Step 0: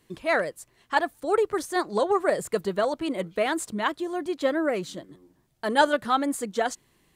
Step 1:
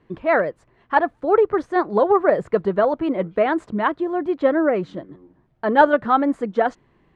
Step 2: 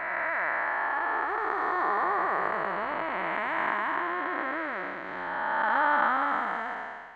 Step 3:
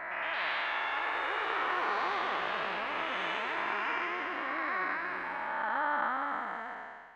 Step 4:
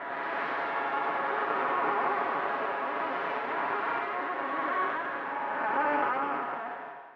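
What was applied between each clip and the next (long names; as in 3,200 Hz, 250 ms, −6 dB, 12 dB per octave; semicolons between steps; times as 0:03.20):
low-pass filter 1,600 Hz 12 dB per octave; level +7 dB
spectrum smeared in time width 644 ms; graphic EQ with 10 bands 125 Hz −12 dB, 250 Hz −8 dB, 500 Hz −11 dB, 1,000 Hz +10 dB, 2,000 Hz +11 dB; background raised ahead of every attack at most 21 dB per second; level −1.5 dB
delay with pitch and tempo change per echo 112 ms, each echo +4 semitones, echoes 3; level −7 dB
lower of the sound and its delayed copy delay 7.2 ms; flat-topped band-pass 650 Hz, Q 0.54; level +7 dB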